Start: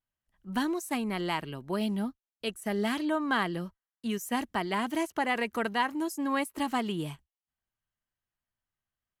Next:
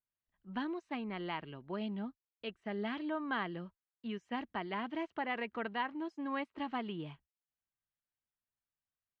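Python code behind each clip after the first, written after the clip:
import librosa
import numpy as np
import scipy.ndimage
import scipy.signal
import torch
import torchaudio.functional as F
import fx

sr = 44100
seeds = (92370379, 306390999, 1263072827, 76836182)

y = scipy.signal.sosfilt(scipy.signal.butter(4, 3500.0, 'lowpass', fs=sr, output='sos'), x)
y = fx.low_shelf(y, sr, hz=65.0, db=-6.5)
y = y * 10.0 ** (-8.0 / 20.0)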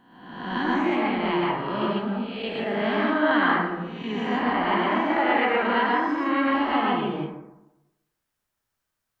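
y = fx.spec_swells(x, sr, rise_s=1.0)
y = fx.rev_plate(y, sr, seeds[0], rt60_s=0.97, hf_ratio=0.35, predelay_ms=100, drr_db=-4.0)
y = y * 10.0 ** (7.5 / 20.0)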